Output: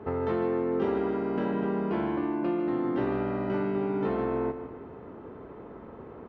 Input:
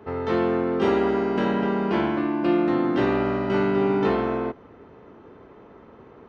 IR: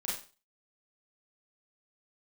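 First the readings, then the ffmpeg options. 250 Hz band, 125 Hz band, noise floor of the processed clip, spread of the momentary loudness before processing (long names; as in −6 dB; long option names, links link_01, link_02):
−6.0 dB, −5.0 dB, −45 dBFS, 4 LU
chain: -af "lowpass=frequency=1300:poles=1,acompressor=threshold=-32dB:ratio=3,aecho=1:1:152|304|456|608:0.282|0.116|0.0474|0.0194,volume=3.5dB"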